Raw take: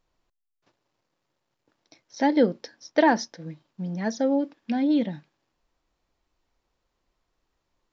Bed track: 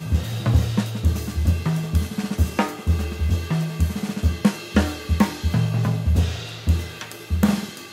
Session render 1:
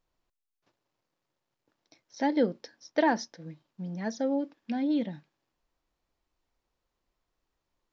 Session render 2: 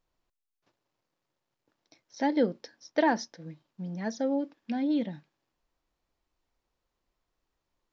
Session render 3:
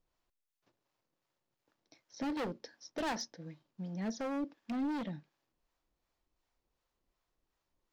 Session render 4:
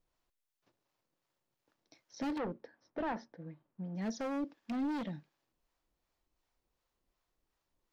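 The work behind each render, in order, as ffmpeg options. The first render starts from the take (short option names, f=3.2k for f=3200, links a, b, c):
-af "volume=-5.5dB"
-af anull
-filter_complex "[0:a]volume=31dB,asoftclip=hard,volume=-31dB,acrossover=split=560[a][b];[a]aeval=exprs='val(0)*(1-0.5/2+0.5/2*cos(2*PI*2.7*n/s))':c=same[c];[b]aeval=exprs='val(0)*(1-0.5/2-0.5/2*cos(2*PI*2.7*n/s))':c=same[d];[c][d]amix=inputs=2:normalize=0"
-filter_complex "[0:a]asettb=1/sr,asplit=3[a][b][c];[a]atrim=end=2.384[d];[b]atrim=start=2.38:end=3.96,asetpts=PTS-STARTPTS,afade=t=in:d=0.004:c=qsin,afade=t=out:st=1.576:d=0.004:c=qsin,lowpass=1.7k[e];[c]atrim=start=3.956[f];[d][e]acrossfade=d=0.004:c1=hsin:c2=qsin[g];[g][f]acrossfade=d=0.004:c1=qsin:c2=hsin"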